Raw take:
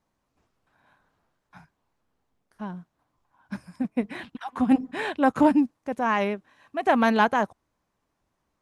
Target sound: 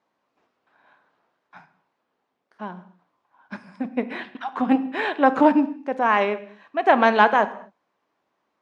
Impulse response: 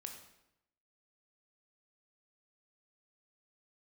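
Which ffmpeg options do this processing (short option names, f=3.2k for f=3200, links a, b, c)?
-filter_complex "[0:a]highpass=350,lowpass=3.9k,asplit=2[a][b];[1:a]atrim=start_sample=2205,afade=t=out:st=0.31:d=0.01,atrim=end_sample=14112,lowshelf=f=240:g=8[c];[b][c]afir=irnorm=-1:irlink=0,volume=-0.5dB[d];[a][d]amix=inputs=2:normalize=0,volume=1.5dB"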